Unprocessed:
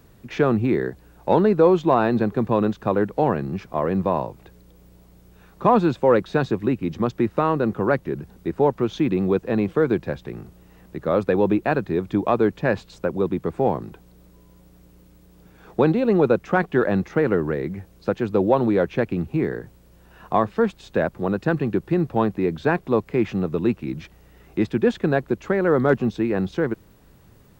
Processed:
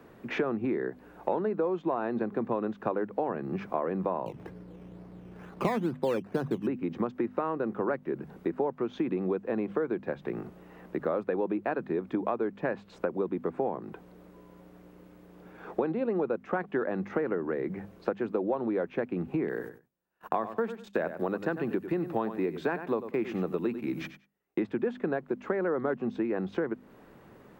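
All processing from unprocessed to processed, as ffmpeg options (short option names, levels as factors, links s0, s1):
-filter_complex "[0:a]asettb=1/sr,asplit=3[s0][s1][s2];[s0]atrim=end=4.264[s3];[s1]atrim=start=4.26:end=6.67,asetpts=PTS-STARTPTS,afade=t=in:d=0.004:c=qsin,afade=t=out:st=2.406:d=0.004:c=qsin,lowpass=3500,acrusher=samples=12:mix=1:aa=0.000001:lfo=1:lforange=7.2:lforate=2.2,equalizer=f=120:t=o:w=2.2:g=10.5[s4];[s2]atrim=start=6.666[s5];[s3][s4]acrossfade=d=0.004:c1=hsin:c2=qsin[s6];[s6][s5]acrossfade=d=0.004:c1=qsin:c2=hsin,asettb=1/sr,asplit=3[s7][s8][s9];[s7]atrim=end=19.484[s10];[s8]atrim=start=19.48:end=24.6,asetpts=PTS-STARTPTS,afade=t=in:d=0.004:c=qsin,afade=t=out:st=5.116:d=0.004:c=qsin,agate=range=0.0158:threshold=0.00631:ratio=16:release=100:detection=peak,aemphasis=mode=production:type=75kf,aecho=1:1:95|190:0.224|0.0336,atrim=end_sample=225792[s11];[s9]atrim=start=24.596[s12];[s10][s11]acrossfade=d=0.004:c1=hsin:c2=qsin[s13];[s13][s12]acrossfade=d=0.004:c1=qsin:c2=hsin,acrossover=split=180 2500:gain=0.141 1 0.178[s14][s15][s16];[s14][s15][s16]amix=inputs=3:normalize=0,bandreject=f=50:t=h:w=6,bandreject=f=100:t=h:w=6,bandreject=f=150:t=h:w=6,bandreject=f=200:t=h:w=6,bandreject=f=250:t=h:w=6,acompressor=threshold=0.0251:ratio=6,volume=1.68"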